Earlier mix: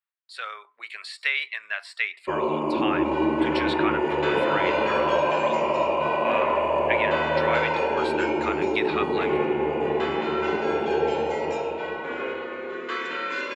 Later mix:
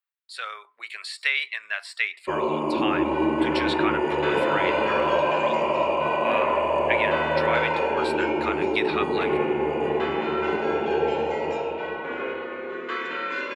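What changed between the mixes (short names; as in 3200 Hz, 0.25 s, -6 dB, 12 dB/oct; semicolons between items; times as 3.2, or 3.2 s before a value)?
second sound: add tone controls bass +1 dB, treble -12 dB; master: add high shelf 5300 Hz +7.5 dB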